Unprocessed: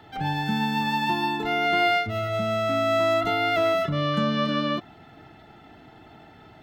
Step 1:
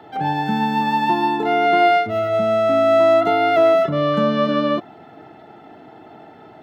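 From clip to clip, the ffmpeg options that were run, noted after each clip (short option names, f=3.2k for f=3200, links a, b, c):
-af "highpass=100,equalizer=f=530:w=0.41:g=12.5,volume=-2.5dB"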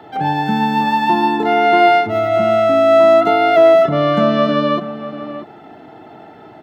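-filter_complex "[0:a]asplit=2[a][b];[b]adelay=641.4,volume=-12dB,highshelf=f=4k:g=-14.4[c];[a][c]amix=inputs=2:normalize=0,volume=3.5dB"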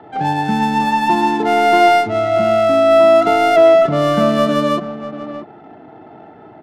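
-af "adynamicsmooth=sensitivity=3:basefreq=1.9k"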